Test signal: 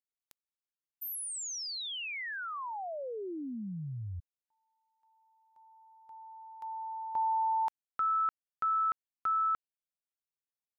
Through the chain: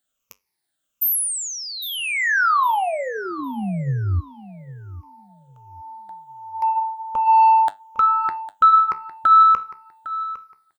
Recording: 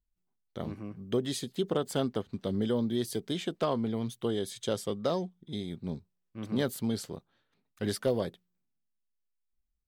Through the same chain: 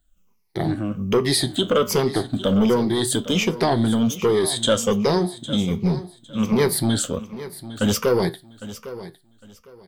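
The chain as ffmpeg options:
ffmpeg -i in.wav -filter_complex "[0:a]afftfilt=real='re*pow(10,15/40*sin(2*PI*(0.82*log(max(b,1)*sr/1024/100)/log(2)-(-1.3)*(pts-256)/sr)))':imag='im*pow(10,15/40*sin(2*PI*(0.82*log(max(b,1)*sr/1024/100)/log(2)-(-1.3)*(pts-256)/sr)))':win_size=1024:overlap=0.75,asplit=2[link_01][link_02];[link_02]alimiter=level_in=1dB:limit=-24dB:level=0:latency=1:release=57,volume=-1dB,volume=0.5dB[link_03];[link_01][link_03]amix=inputs=2:normalize=0,acontrast=85,acrossover=split=1100[link_04][link_05];[link_04]asoftclip=type=tanh:threshold=-14.5dB[link_06];[link_06][link_05]amix=inputs=2:normalize=0,flanger=delay=9.9:depth=6.2:regen=-70:speed=0.26:shape=sinusoidal,aecho=1:1:806|1612|2418:0.178|0.0427|0.0102,volume=5.5dB" out.wav

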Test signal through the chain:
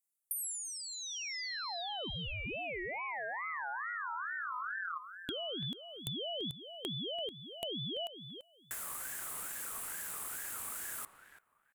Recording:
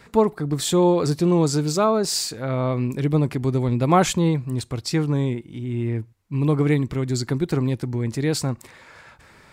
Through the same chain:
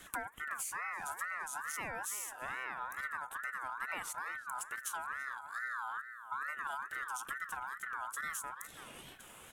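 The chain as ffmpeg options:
ffmpeg -i in.wav -filter_complex "[0:a]highshelf=frequency=7300:width_type=q:width=3:gain=11.5,acompressor=threshold=-32dB:ratio=16,asplit=2[link_01][link_02];[link_02]adelay=337,lowpass=frequency=1400:poles=1,volume=-9.5dB,asplit=2[link_03][link_04];[link_04]adelay=337,lowpass=frequency=1400:poles=1,volume=0.18,asplit=2[link_05][link_06];[link_06]adelay=337,lowpass=frequency=1400:poles=1,volume=0.18[link_07];[link_01][link_03][link_05][link_07]amix=inputs=4:normalize=0,aeval=exprs='val(0)*sin(2*PI*1400*n/s+1400*0.2/2.3*sin(2*PI*2.3*n/s))':channel_layout=same,volume=-3dB" out.wav

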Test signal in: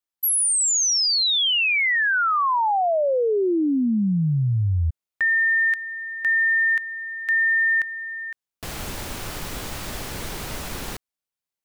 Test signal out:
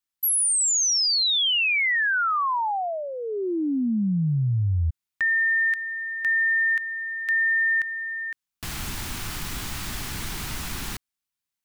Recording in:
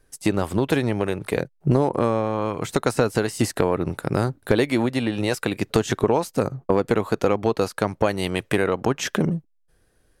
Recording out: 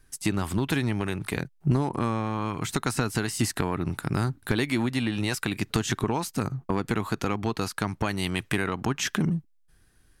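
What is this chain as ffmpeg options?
ffmpeg -i in.wav -filter_complex "[0:a]equalizer=frequency=530:width=1.6:gain=-14,asplit=2[link_01][link_02];[link_02]acompressor=threshold=-30dB:ratio=6:attack=1.2:release=75:knee=6:detection=peak,volume=1dB[link_03];[link_01][link_03]amix=inputs=2:normalize=0,volume=-4dB" out.wav

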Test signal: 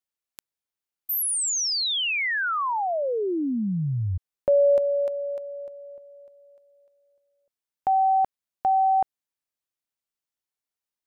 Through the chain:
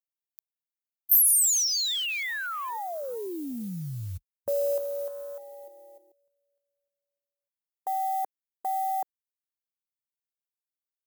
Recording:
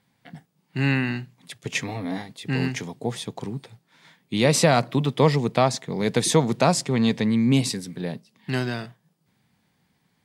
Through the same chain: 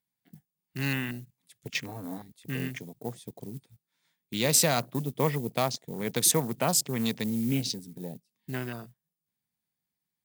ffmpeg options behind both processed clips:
ffmpeg -i in.wav -af "afwtdn=0.0224,acrusher=bits=8:mode=log:mix=0:aa=0.000001,aemphasis=mode=production:type=75fm,volume=-8dB" out.wav

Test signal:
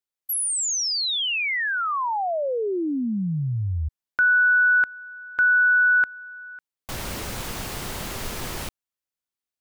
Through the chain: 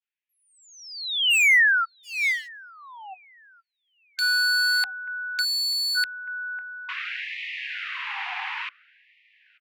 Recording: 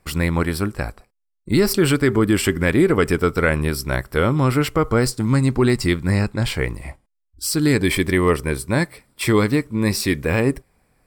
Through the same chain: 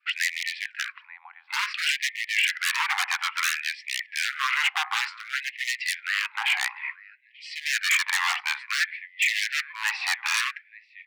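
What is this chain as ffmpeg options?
ffmpeg -i in.wav -filter_complex "[0:a]acontrast=27,highpass=320,equalizer=frequency=380:width_type=q:width=4:gain=-8,equalizer=frequency=730:width_type=q:width=4:gain=7,equalizer=frequency=1300:width_type=q:width=4:gain=-5,equalizer=frequency=2600:width_type=q:width=4:gain=5,lowpass=frequency=2900:width=0.5412,lowpass=frequency=2900:width=1.3066,asplit=2[link_01][link_02];[link_02]adelay=887,lowpass=frequency=2300:poles=1,volume=-22.5dB,asplit=2[link_03][link_04];[link_04]adelay=887,lowpass=frequency=2300:poles=1,volume=0.45,asplit=2[link_05][link_06];[link_06]adelay=887,lowpass=frequency=2300:poles=1,volume=0.45[link_07];[link_03][link_05][link_07]amix=inputs=3:normalize=0[link_08];[link_01][link_08]amix=inputs=2:normalize=0,aeval=exprs='0.141*(abs(mod(val(0)/0.141+3,4)-2)-1)':channel_layout=same,adynamicequalizer=threshold=0.00891:dfrequency=2000:dqfactor=2.4:tfrequency=2000:tqfactor=2.4:attack=5:release=100:ratio=0.375:range=2:mode=boostabove:tftype=bell,afftfilt=real='re*gte(b*sr/1024,720*pow(1800/720,0.5+0.5*sin(2*PI*0.57*pts/sr)))':imag='im*gte(b*sr/1024,720*pow(1800/720,0.5+0.5*sin(2*PI*0.57*pts/sr)))':win_size=1024:overlap=0.75" out.wav

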